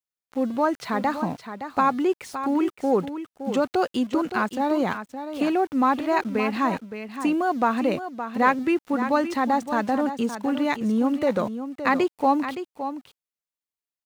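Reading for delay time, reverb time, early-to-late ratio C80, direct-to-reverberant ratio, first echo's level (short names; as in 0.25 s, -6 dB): 0.567 s, none, none, none, -10.0 dB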